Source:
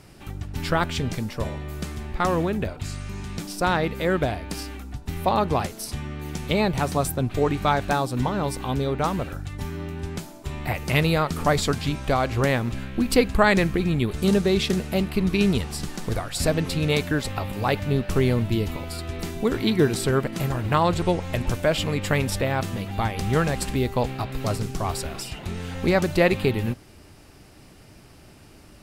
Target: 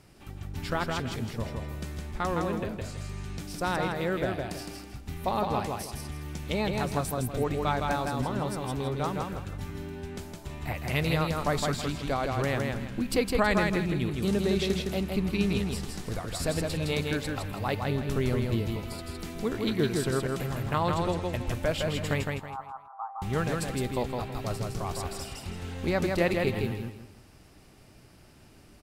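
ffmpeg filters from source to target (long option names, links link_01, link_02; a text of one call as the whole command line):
ffmpeg -i in.wav -filter_complex "[0:a]asettb=1/sr,asplit=3[link_01][link_02][link_03];[link_01]atrim=end=22.234[link_04];[link_02]atrim=start=22.23:end=23.22,asetpts=PTS-STARTPTS,afade=type=in:duration=0.004:curve=qsin,afade=type=out:start_time=0.986:duration=0.004:curve=qsin,asuperpass=centerf=1000:order=8:qfactor=1.8[link_05];[link_03]atrim=start=23.216[link_06];[link_04][link_05]acrossfade=duration=0.004:curve1=hsin:curve2=qsin[link_07];[link_07][link_06]acrossfade=duration=0.004:curve1=qsin:curve2=hsin,aecho=1:1:162|324|486|648:0.668|0.201|0.0602|0.018,volume=-7.5dB" out.wav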